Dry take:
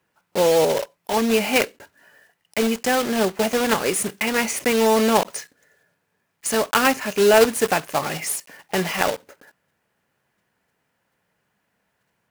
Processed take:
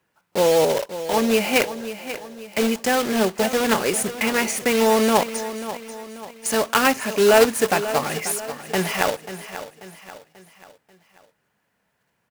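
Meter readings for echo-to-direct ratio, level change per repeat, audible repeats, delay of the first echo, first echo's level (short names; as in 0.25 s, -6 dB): -11.5 dB, -7.0 dB, 4, 0.538 s, -12.5 dB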